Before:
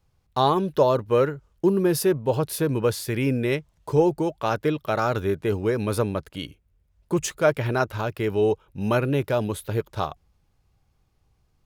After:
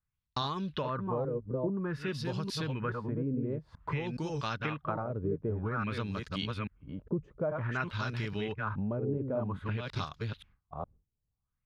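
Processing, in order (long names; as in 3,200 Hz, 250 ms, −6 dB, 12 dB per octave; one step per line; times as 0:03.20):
delay that plays each chunk backwards 417 ms, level −5 dB
noise gate with hold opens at −53 dBFS
flat-topped bell 520 Hz −9.5 dB
downward compressor 6 to 1, threshold −32 dBFS, peak gain reduction 13 dB
auto-filter low-pass sine 0.52 Hz 430–5,400 Hz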